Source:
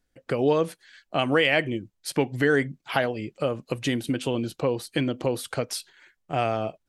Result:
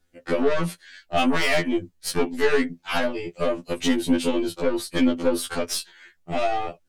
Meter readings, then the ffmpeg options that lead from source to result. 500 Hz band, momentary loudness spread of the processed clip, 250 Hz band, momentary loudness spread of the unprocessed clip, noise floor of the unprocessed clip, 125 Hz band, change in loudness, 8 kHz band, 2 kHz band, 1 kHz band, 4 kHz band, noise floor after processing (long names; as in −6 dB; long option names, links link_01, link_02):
+1.0 dB, 7 LU, +4.0 dB, 9 LU, −75 dBFS, −5.0 dB, +2.0 dB, +5.5 dB, 0.0 dB, +2.0 dB, +2.0 dB, −65 dBFS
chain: -af "aeval=exprs='(tanh(14.1*val(0)+0.35)-tanh(0.35))/14.1':channel_layout=same,afftfilt=real='re*2*eq(mod(b,4),0)':imag='im*2*eq(mod(b,4),0)':win_size=2048:overlap=0.75,volume=9dB"